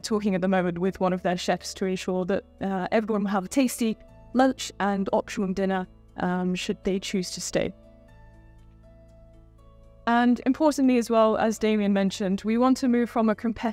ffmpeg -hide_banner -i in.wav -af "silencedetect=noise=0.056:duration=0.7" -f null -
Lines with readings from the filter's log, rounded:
silence_start: 7.68
silence_end: 10.07 | silence_duration: 2.39